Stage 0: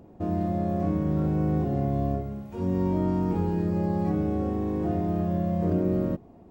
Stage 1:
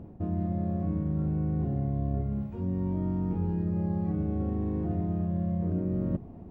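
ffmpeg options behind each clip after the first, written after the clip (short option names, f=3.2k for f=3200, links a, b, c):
-af "bass=f=250:g=10,treble=f=4k:g=-12,areverse,acompressor=threshold=-28dB:ratio=4,areverse"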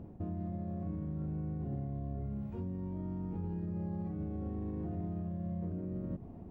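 -af "alimiter=level_in=4dB:limit=-24dB:level=0:latency=1:release=85,volume=-4dB,volume=-3dB"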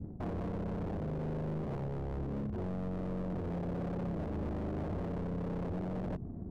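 -af "adynamicequalizer=threshold=0.00141:dfrequency=740:dqfactor=0.8:tfrequency=740:tqfactor=0.8:attack=5:release=100:ratio=0.375:range=2:mode=cutabove:tftype=bell,adynamicsmooth=sensitivity=7:basefreq=550,aeval=exprs='0.0126*(abs(mod(val(0)/0.0126+3,4)-2)-1)':c=same,volume=6.5dB"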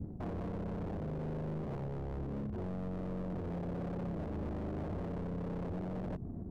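-af "alimiter=level_in=12dB:limit=-24dB:level=0:latency=1:release=257,volume=-12dB,volume=2.5dB"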